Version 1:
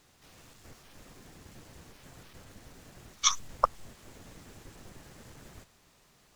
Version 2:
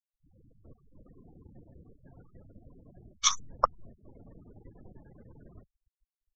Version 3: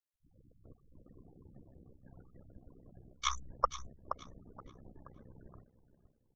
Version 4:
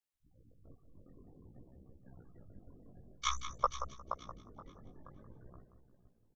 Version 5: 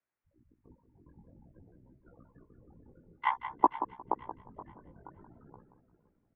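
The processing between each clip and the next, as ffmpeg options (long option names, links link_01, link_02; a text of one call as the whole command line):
ffmpeg -i in.wav -af "afftfilt=real='re*gte(hypot(re,im),0.00501)':imag='im*gte(hypot(re,im),0.00501)':win_size=1024:overlap=0.75" out.wav
ffmpeg -i in.wav -filter_complex "[0:a]asplit=2[link_01][link_02];[link_02]adelay=475,lowpass=frequency=2900:poles=1,volume=-12.5dB,asplit=2[link_03][link_04];[link_04]adelay=475,lowpass=frequency=2900:poles=1,volume=0.41,asplit=2[link_05][link_06];[link_06]adelay=475,lowpass=frequency=2900:poles=1,volume=0.41,asplit=2[link_07][link_08];[link_08]adelay=475,lowpass=frequency=2900:poles=1,volume=0.41[link_09];[link_01][link_03][link_05][link_07][link_09]amix=inputs=5:normalize=0,tremolo=f=64:d=0.788,acrossover=split=2800[link_10][link_11];[link_11]acompressor=threshold=-38dB:ratio=4:attack=1:release=60[link_12];[link_10][link_12]amix=inputs=2:normalize=0" out.wav
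ffmpeg -i in.wav -af "flanger=delay=15:depth=7.1:speed=0.52,aecho=1:1:178|356:0.282|0.0507,volume=2.5dB" out.wav
ffmpeg -i in.wav -af "highpass=frequency=290:width_type=q:width=0.5412,highpass=frequency=290:width_type=q:width=1.307,lowpass=frequency=2400:width_type=q:width=0.5176,lowpass=frequency=2400:width_type=q:width=0.7071,lowpass=frequency=2400:width_type=q:width=1.932,afreqshift=-210,volume=7.5dB" out.wav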